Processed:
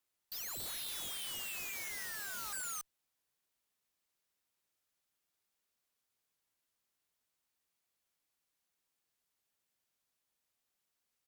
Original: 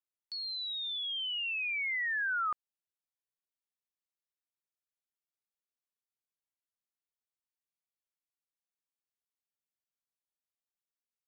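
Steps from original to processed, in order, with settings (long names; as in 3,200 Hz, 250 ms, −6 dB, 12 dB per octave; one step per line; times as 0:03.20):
single-tap delay 283 ms −10 dB
harmonic generator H 5 −12 dB, 8 −39 dB, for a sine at −26 dBFS
wrap-around overflow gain 38 dB
level +2.5 dB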